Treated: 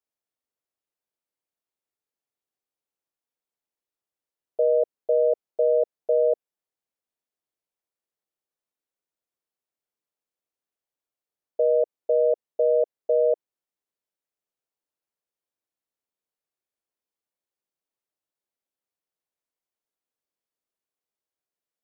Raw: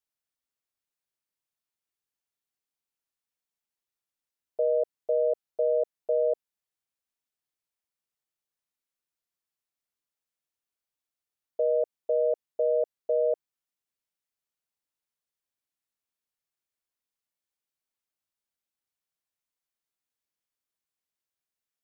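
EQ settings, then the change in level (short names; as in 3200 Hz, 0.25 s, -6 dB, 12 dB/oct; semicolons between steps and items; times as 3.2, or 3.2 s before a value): bell 470 Hz +10 dB 2.3 oct; -5.0 dB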